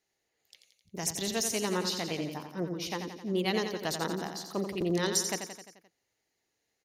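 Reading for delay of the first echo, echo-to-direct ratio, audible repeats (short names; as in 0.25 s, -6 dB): 87 ms, -5.5 dB, 6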